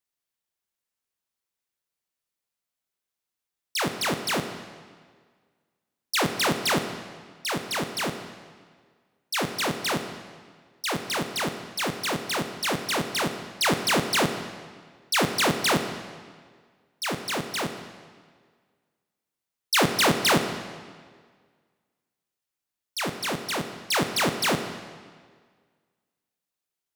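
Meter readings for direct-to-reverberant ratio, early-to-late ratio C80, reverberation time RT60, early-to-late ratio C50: 7.0 dB, 9.5 dB, 1.7 s, 8.5 dB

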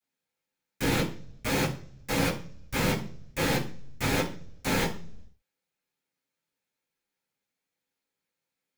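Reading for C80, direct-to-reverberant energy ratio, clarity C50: 15.0 dB, −10.5 dB, 10.5 dB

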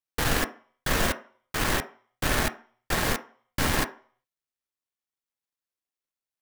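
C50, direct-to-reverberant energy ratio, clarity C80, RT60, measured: 15.5 dB, 7.0 dB, 20.0 dB, 0.45 s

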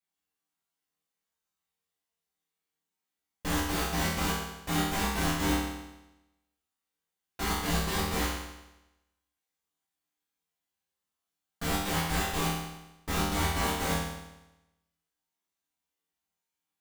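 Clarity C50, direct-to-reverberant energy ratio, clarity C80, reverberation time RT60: 1.0 dB, −9.0 dB, 3.5 dB, 0.95 s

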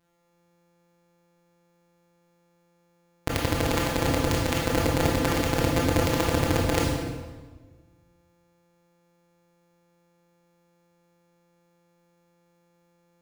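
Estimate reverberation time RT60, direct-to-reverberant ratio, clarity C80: 1.4 s, −3.5 dB, 2.5 dB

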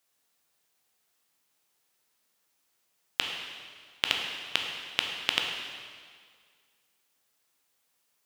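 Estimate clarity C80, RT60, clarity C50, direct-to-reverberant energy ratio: 4.0 dB, 1.9 s, 3.0 dB, 1.0 dB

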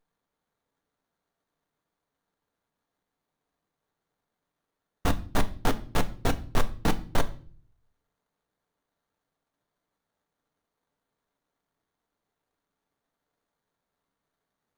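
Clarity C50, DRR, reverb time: 17.5 dB, 8.0 dB, 0.45 s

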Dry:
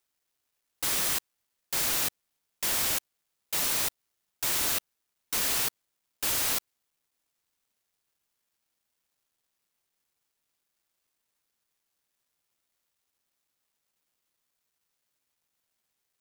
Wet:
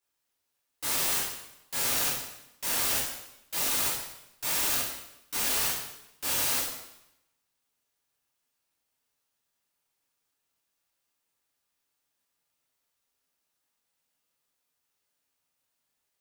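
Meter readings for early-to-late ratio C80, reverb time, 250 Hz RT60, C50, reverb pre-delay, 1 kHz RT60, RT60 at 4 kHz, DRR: 5.5 dB, 0.85 s, 0.90 s, 2.5 dB, 5 ms, 0.85 s, 0.80 s, −7.5 dB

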